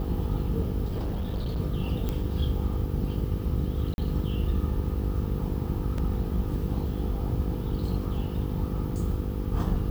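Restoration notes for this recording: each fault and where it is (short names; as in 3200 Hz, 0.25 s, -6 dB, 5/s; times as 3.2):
buzz 50 Hz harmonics 10 -32 dBFS
0.88–1.59 clipped -26 dBFS
2.09 pop -17 dBFS
3.94–3.98 gap 41 ms
5.98 gap 3.2 ms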